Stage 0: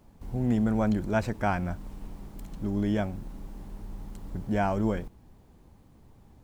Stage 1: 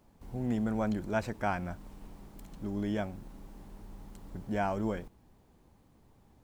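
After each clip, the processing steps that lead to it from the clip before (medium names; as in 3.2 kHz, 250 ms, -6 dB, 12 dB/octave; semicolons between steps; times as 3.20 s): bass shelf 200 Hz -5.5 dB; trim -3.5 dB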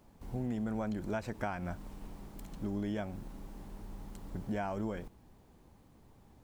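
compression 10:1, threshold -34 dBFS, peak gain reduction 10 dB; trim +2 dB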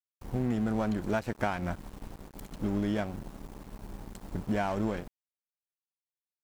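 crossover distortion -48.5 dBFS; trim +7.5 dB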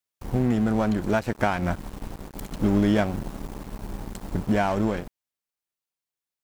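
gain riding within 5 dB 2 s; trim +6 dB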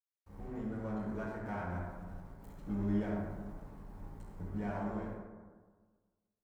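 reverberation RT60 1.5 s, pre-delay 50 ms; trim +1.5 dB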